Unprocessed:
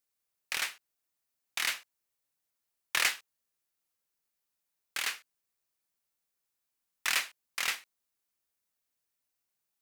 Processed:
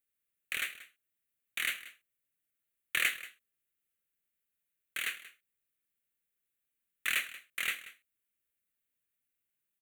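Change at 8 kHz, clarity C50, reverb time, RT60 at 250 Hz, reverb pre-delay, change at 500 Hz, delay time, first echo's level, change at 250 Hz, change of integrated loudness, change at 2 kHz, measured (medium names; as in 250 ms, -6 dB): -6.0 dB, no reverb, no reverb, no reverb, no reverb, -5.0 dB, 183 ms, -17.0 dB, -1.0 dB, -2.0 dB, -0.5 dB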